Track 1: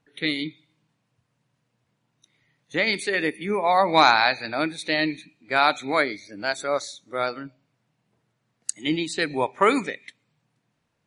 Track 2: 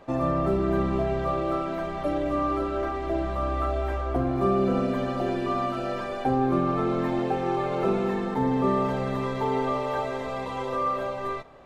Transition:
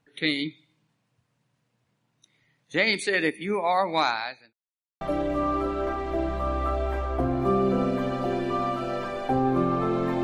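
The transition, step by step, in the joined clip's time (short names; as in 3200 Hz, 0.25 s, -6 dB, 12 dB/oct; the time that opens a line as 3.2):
track 1
3.29–4.53 fade out linear
4.53–5.01 mute
5.01 switch to track 2 from 1.97 s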